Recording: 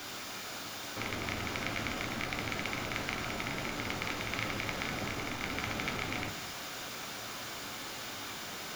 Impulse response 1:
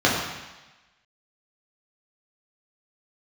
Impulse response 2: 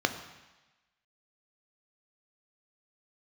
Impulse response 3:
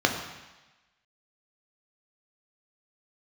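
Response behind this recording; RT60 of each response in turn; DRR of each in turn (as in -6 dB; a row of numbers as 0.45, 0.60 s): 3; 1.1, 1.1, 1.1 s; -6.0, 6.5, 2.0 dB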